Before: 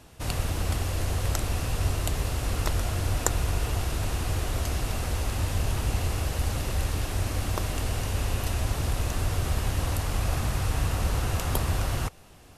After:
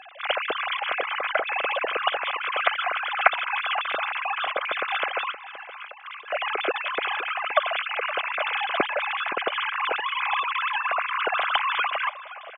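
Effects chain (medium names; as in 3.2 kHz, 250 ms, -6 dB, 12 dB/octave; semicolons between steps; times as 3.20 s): formants replaced by sine waves; bass shelf 250 Hz -10.5 dB; 5.31–6.32 s: compressor with a negative ratio -37 dBFS, ratio -0.5; comb of notches 920 Hz; echo from a far wall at 89 m, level -14 dB; trim +2 dB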